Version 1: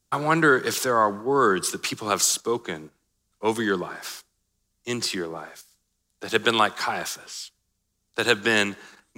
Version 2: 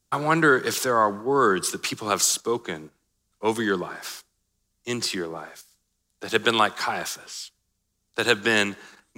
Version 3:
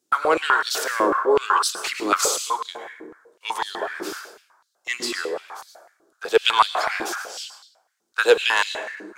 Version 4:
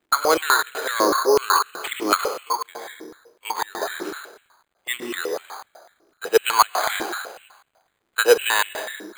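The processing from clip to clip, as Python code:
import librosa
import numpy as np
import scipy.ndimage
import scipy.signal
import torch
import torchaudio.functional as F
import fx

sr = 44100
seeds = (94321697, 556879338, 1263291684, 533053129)

y1 = x
y2 = fx.diode_clip(y1, sr, knee_db=-8.0)
y2 = fx.rev_plate(y2, sr, seeds[0], rt60_s=1.1, hf_ratio=0.45, predelay_ms=90, drr_db=5.5)
y2 = fx.filter_held_highpass(y2, sr, hz=8.0, low_hz=330.0, high_hz=4000.0)
y2 = y2 * 10.0 ** (-1.0 / 20.0)
y3 = fx.dmg_crackle(y2, sr, seeds[1], per_s=180.0, level_db=-51.0)
y3 = np.repeat(scipy.signal.resample_poly(y3, 1, 8), 8)[:len(y3)]
y3 = y3 * 10.0 ** (1.0 / 20.0)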